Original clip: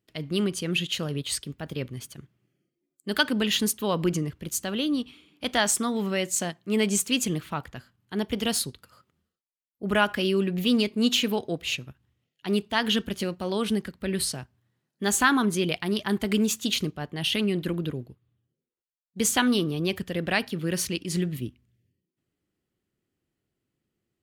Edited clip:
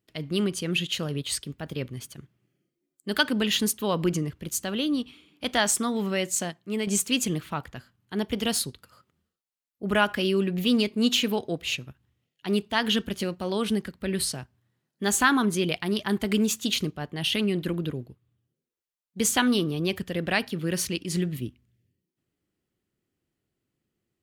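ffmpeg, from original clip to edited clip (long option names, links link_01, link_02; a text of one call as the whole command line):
ffmpeg -i in.wav -filter_complex "[0:a]asplit=2[link_01][link_02];[link_01]atrim=end=6.87,asetpts=PTS-STARTPTS,afade=type=out:start_time=6.32:duration=0.55:silence=0.473151[link_03];[link_02]atrim=start=6.87,asetpts=PTS-STARTPTS,afade=type=in:duration=0.004:curve=hsin:silence=0.473151[link_04];[link_03][link_04]concat=n=2:v=0:a=1" out.wav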